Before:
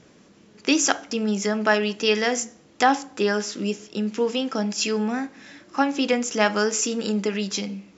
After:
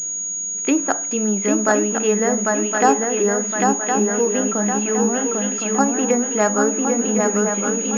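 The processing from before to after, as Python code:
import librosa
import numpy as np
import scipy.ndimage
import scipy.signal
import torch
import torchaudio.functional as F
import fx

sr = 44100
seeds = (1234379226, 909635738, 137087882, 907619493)

y = fx.echo_swing(x, sr, ms=1063, ratio=3, feedback_pct=44, wet_db=-3.5)
y = fx.env_lowpass_down(y, sr, base_hz=1400.0, full_db=-17.5)
y = fx.pwm(y, sr, carrier_hz=6700.0)
y = y * 10.0 ** (3.0 / 20.0)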